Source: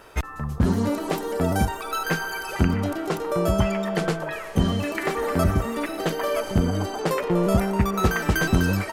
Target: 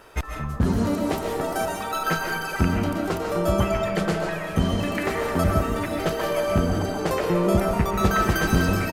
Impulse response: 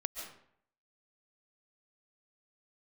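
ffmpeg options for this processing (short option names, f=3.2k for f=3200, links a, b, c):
-filter_complex "[0:a]asettb=1/sr,asplit=3[a][b][c];[a]atrim=end=1.414[d];[b]atrim=start=1.41:end=1.94,asetpts=PTS-STARTPTS,afade=t=in:d=0.004:c=qsin,afade=t=out:st=0.526:d=0.004:c=qsin,highpass=380[e];[c]atrim=start=1.936[f];[d][e]acrossfade=d=0.004:c1=hsin:c2=qsin[g];[g][f]acrossfade=d=0.004:c1=qsin:c2=hsin,aecho=1:1:517|1034|1551|2068|2585|3102:0.158|0.0935|0.0552|0.0326|0.0192|0.0113[h];[1:a]atrim=start_sample=2205[i];[h][i]afir=irnorm=-1:irlink=0"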